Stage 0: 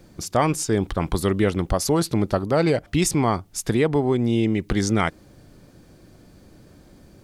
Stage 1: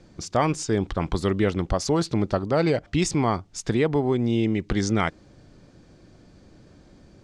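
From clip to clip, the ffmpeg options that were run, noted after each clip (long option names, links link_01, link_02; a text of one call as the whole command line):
ffmpeg -i in.wav -af "lowpass=frequency=7300:width=0.5412,lowpass=frequency=7300:width=1.3066,volume=-2dB" out.wav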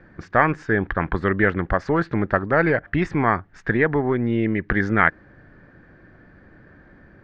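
ffmpeg -i in.wav -af "aeval=exprs='0.398*(cos(1*acos(clip(val(0)/0.398,-1,1)))-cos(1*PI/2))+0.0562*(cos(2*acos(clip(val(0)/0.398,-1,1)))-cos(2*PI/2))':channel_layout=same,lowpass=frequency=1700:width_type=q:width=6.1,volume=1dB" out.wav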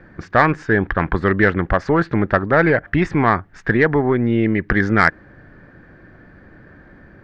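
ffmpeg -i in.wav -af "asoftclip=type=tanh:threshold=-5dB,volume=4.5dB" out.wav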